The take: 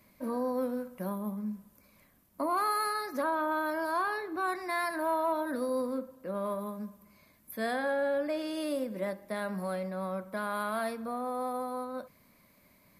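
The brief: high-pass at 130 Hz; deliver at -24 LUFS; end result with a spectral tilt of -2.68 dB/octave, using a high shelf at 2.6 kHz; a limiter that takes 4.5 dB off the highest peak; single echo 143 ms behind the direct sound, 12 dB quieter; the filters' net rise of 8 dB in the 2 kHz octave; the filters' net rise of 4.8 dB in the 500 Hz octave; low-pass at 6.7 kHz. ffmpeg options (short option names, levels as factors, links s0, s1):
-af "highpass=130,lowpass=6700,equalizer=f=500:t=o:g=5,equalizer=f=2000:t=o:g=8.5,highshelf=f=2600:g=4.5,alimiter=limit=0.112:level=0:latency=1,aecho=1:1:143:0.251,volume=1.88"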